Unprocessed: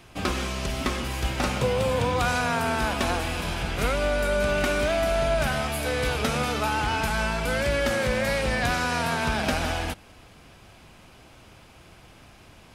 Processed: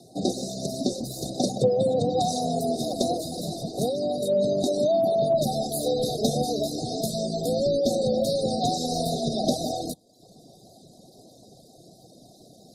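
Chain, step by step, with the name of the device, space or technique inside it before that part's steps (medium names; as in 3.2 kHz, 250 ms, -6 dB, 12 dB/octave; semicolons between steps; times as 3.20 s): FFT band-reject 780–3600 Hz; reverb removal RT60 0.74 s; 3.73–4.22 s: dynamic bell 580 Hz, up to -5 dB, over -39 dBFS, Q 6.3; noise-suppressed video call (high-pass 140 Hz 24 dB/octave; spectral gate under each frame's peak -30 dB strong; trim +5.5 dB; Opus 20 kbps 48 kHz)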